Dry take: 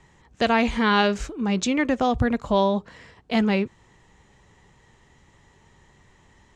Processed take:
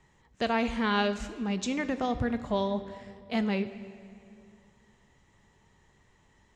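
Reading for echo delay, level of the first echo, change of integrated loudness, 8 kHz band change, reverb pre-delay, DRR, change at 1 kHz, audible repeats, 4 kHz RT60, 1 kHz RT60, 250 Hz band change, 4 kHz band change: no echo, no echo, -7.5 dB, -7.5 dB, 5 ms, 10.5 dB, -8.0 dB, no echo, 1.6 s, 2.3 s, -7.0 dB, -7.5 dB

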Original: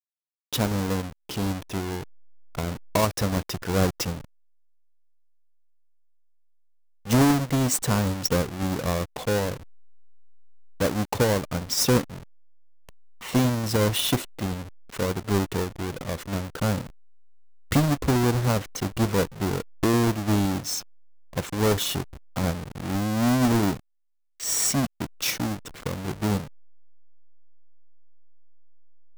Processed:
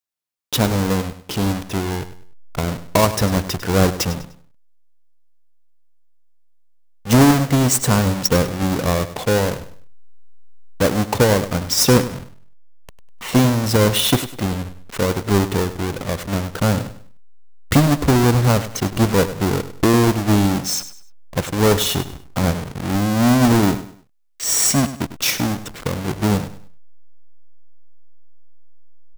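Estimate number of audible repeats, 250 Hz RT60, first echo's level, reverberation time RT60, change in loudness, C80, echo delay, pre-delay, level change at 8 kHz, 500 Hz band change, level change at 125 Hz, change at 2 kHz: 3, no reverb, -13.5 dB, no reverb, +7.0 dB, no reverb, 100 ms, no reverb, +7.0 dB, +7.0 dB, +7.0 dB, +7.0 dB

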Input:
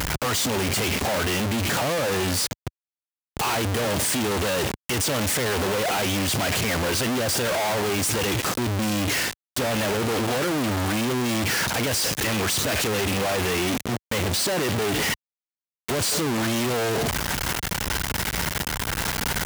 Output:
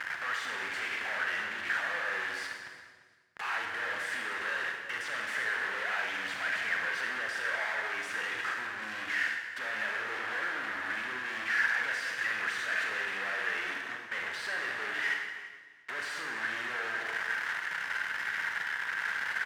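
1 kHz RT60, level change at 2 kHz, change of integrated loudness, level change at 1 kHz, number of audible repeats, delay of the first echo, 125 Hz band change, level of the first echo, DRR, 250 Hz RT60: 1.4 s, -1.0 dB, -9.0 dB, -9.5 dB, 2, 344 ms, under -30 dB, -18.5 dB, 1.0 dB, 1.7 s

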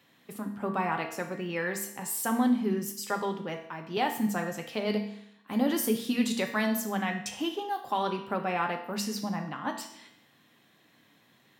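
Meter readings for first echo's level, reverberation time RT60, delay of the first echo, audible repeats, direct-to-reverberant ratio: no echo, 0.75 s, no echo, no echo, 3.0 dB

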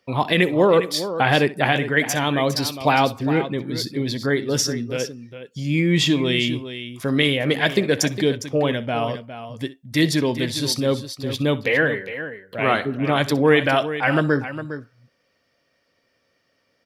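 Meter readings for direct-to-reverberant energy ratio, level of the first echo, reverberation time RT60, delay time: no reverb, -17.5 dB, no reverb, 63 ms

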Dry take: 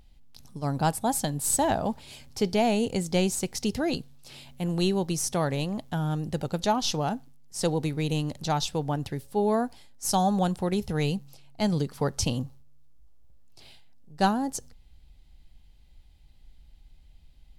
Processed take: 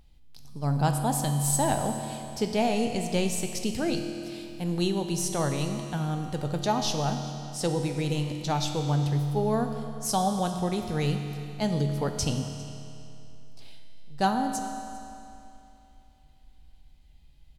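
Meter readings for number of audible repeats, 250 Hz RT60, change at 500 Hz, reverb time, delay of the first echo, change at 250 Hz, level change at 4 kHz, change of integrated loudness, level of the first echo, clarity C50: 1, 2.8 s, -1.0 dB, 2.8 s, 402 ms, -1.0 dB, -0.5 dB, -0.5 dB, -20.5 dB, 5.5 dB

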